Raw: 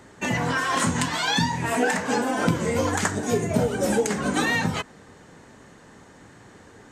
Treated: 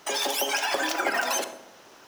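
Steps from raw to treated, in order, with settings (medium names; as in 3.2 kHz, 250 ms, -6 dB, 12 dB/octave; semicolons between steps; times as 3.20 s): wide varispeed 3.34×; filtered feedback delay 68 ms, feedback 62%, low-pass 1.4 kHz, level -9 dB; on a send at -14 dB: reverberation RT60 0.65 s, pre-delay 27 ms; on the sum: trim -3.5 dB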